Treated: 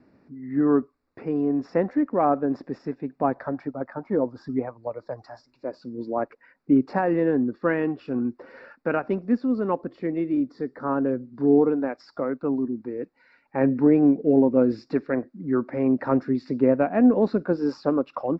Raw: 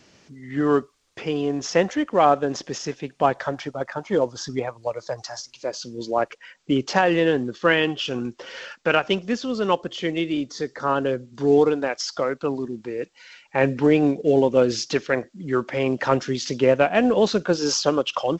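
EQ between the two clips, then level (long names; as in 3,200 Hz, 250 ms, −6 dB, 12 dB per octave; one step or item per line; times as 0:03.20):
moving average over 14 samples
high-frequency loss of the air 90 metres
parametric band 260 Hz +9.5 dB 0.53 octaves
−4.0 dB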